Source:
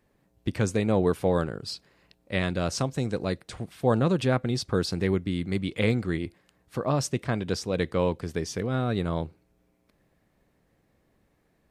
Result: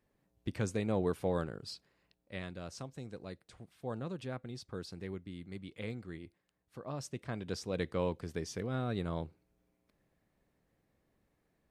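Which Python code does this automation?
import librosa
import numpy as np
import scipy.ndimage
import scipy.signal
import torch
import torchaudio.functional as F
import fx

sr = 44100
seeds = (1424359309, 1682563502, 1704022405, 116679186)

y = fx.gain(x, sr, db=fx.line((1.63, -9.0), (2.6, -17.0), (6.78, -17.0), (7.69, -8.5)))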